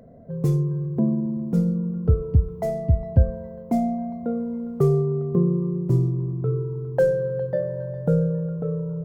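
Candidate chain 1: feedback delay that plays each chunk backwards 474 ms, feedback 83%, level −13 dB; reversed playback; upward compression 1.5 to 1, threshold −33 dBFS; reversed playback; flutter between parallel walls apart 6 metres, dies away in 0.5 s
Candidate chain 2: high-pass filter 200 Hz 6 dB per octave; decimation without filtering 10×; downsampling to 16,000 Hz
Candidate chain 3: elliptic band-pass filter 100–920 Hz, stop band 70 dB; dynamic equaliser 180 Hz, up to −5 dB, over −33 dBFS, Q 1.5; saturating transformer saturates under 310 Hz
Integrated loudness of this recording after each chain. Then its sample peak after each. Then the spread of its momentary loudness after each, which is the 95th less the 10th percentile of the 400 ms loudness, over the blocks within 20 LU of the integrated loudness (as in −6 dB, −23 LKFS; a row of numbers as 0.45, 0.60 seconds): −22.0, −27.0, −28.0 LKFS; −4.5, −10.5, −11.0 dBFS; 9, 8, 7 LU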